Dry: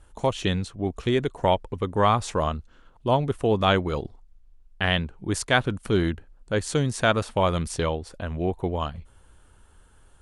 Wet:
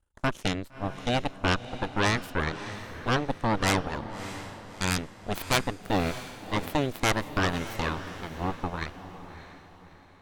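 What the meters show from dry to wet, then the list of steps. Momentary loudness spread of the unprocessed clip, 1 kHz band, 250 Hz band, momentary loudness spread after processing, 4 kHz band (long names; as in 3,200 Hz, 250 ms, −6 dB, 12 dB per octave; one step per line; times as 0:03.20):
10 LU, −4.0 dB, −3.5 dB, 12 LU, −2.0 dB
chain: harmonic generator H 3 −9 dB, 8 −14 dB, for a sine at −4.5 dBFS
feedback delay with all-pass diffusion 625 ms, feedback 41%, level −12 dB
level −1.5 dB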